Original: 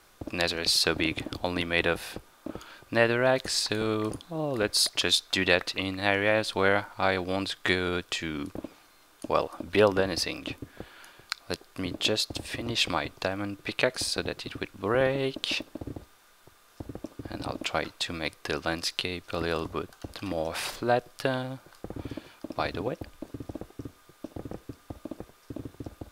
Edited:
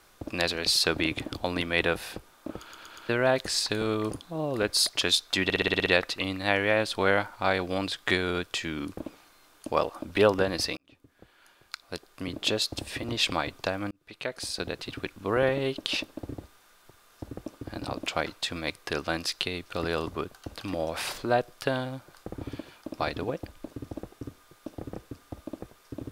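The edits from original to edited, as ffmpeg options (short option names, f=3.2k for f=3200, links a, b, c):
-filter_complex "[0:a]asplit=14[a][b][c][d][e][f][g][h][i][j][k][l][m][n];[a]atrim=end=2.732[o];[b]atrim=start=2.608:end=2.732[p];[c]atrim=start=2.608:end=2.732[q];[d]atrim=start=2.608:end=2.732[r];[e]atrim=start=3.088:end=5.502[s];[f]atrim=start=5.438:end=5.502[t];[g]atrim=start=5.438:end=5.502[u];[h]atrim=start=5.438:end=5.502[v];[i]atrim=start=5.438:end=5.502[w];[j]atrim=start=5.438:end=5.502[x];[k]atrim=start=5.438:end=5.502[y];[l]atrim=start=5.438:end=10.35,asetpts=PTS-STARTPTS,afade=t=out:st=4.908:d=0.004:c=hsin[z];[m]atrim=start=10.35:end=13.49,asetpts=PTS-STARTPTS,afade=t=in:d=1.88,afade=t=out:st=3.136:d=0.004:c=hsin[aa];[n]atrim=start=13.49,asetpts=PTS-STARTPTS,afade=t=in:d=0.94[ab];[o][p]acrossfade=d=0.004:c1=hsin:c2=hsin[ac];[ac][q]acrossfade=d=0.004:c1=hsin:c2=hsin[ad];[ad][r]acrossfade=d=0.004:c1=hsin:c2=hsin[ae];[ae][s]acrossfade=d=0.004:c1=hsin:c2=hsin[af];[af][t]acrossfade=d=0.004:c1=hsin:c2=hsin[ag];[ag][u]acrossfade=d=0.004:c1=hsin:c2=hsin[ah];[ah][v]acrossfade=d=0.004:c1=hsin:c2=hsin[ai];[ai][w]acrossfade=d=0.004:c1=hsin:c2=hsin[aj];[aj][x]acrossfade=d=0.004:c1=hsin:c2=hsin[ak];[ak][y]acrossfade=d=0.004:c1=hsin:c2=hsin[al];[z][aa][ab]concat=n=3:v=0:a=1[am];[al][am]acrossfade=d=0.004:c1=hsin:c2=hsin"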